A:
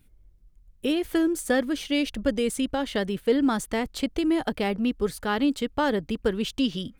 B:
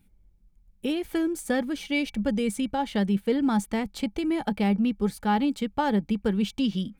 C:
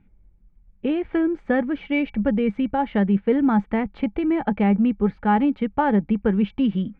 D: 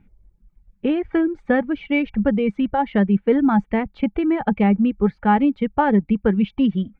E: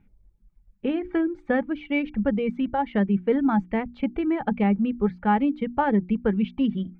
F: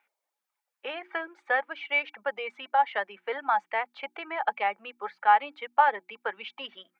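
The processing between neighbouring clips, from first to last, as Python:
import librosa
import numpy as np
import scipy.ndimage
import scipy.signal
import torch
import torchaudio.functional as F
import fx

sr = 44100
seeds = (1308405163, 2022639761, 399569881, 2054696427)

y1 = fx.small_body(x, sr, hz=(200.0, 840.0, 2300.0), ring_ms=80, db=12)
y1 = y1 * 10.0 ** (-4.0 / 20.0)
y2 = scipy.signal.sosfilt(scipy.signal.butter(4, 2300.0, 'lowpass', fs=sr, output='sos'), y1)
y2 = y2 * 10.0 ** (5.0 / 20.0)
y3 = fx.dereverb_blind(y2, sr, rt60_s=0.9)
y3 = y3 * 10.0 ** (3.0 / 20.0)
y4 = fx.hum_notches(y3, sr, base_hz=60, count=6)
y4 = y4 * 10.0 ** (-4.5 / 20.0)
y5 = scipy.signal.sosfilt(scipy.signal.butter(4, 710.0, 'highpass', fs=sr, output='sos'), y4)
y5 = y5 * 10.0 ** (4.5 / 20.0)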